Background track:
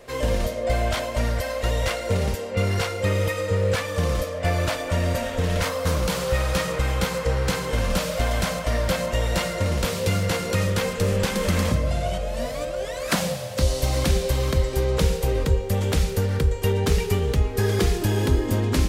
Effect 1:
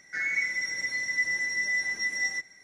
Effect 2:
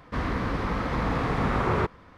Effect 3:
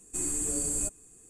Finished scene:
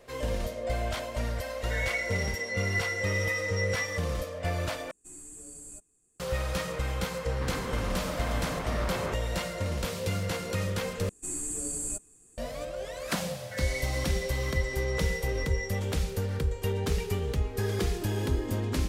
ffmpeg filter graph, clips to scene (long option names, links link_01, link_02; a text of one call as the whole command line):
ffmpeg -i bed.wav -i cue0.wav -i cue1.wav -i cue2.wav -filter_complex "[1:a]asplit=2[link_01][link_02];[3:a]asplit=2[link_03][link_04];[0:a]volume=-8dB[link_05];[2:a]asoftclip=type=tanh:threshold=-27.5dB[link_06];[link_05]asplit=3[link_07][link_08][link_09];[link_07]atrim=end=4.914[link_10];[link_03]atrim=end=1.29,asetpts=PTS-STARTPTS,volume=-15.5dB[link_11];[link_08]atrim=start=6.196:end=11.094[link_12];[link_04]atrim=end=1.29,asetpts=PTS-STARTPTS,volume=-3.5dB[link_13];[link_09]atrim=start=12.376[link_14];[link_01]atrim=end=2.63,asetpts=PTS-STARTPTS,volume=-4.5dB,afade=type=in:duration=0.004:curve=hsin,afade=type=out:start_time=2.626:duration=0.004:curve=hsin,adelay=1570[link_15];[link_06]atrim=end=2.17,asetpts=PTS-STARTPTS,volume=-4.5dB,afade=type=in:duration=0.004:curve=hsin,afade=type=out:start_time=2.166:duration=0.004:curve=hsin,adelay=7280[link_16];[link_02]atrim=end=2.63,asetpts=PTS-STARTPTS,volume=-10dB,afade=type=in:duration=0.004:curve=hsin,afade=type=out:start_time=2.626:duration=0.004:curve=hsin,adelay=13380[link_17];[link_10][link_11]acrossfade=duration=0.004:curve1=hsin:curve2=hsin[link_18];[link_18][link_12]acrossfade=duration=0.004:curve1=hsin:curve2=hsin[link_19];[link_19][link_13]acrossfade=duration=0.004:curve1=hsin:curve2=hsin[link_20];[link_20][link_14]acrossfade=duration=0.004:curve1=hsin:curve2=hsin[link_21];[link_21][link_15][link_16][link_17]amix=inputs=4:normalize=0" out.wav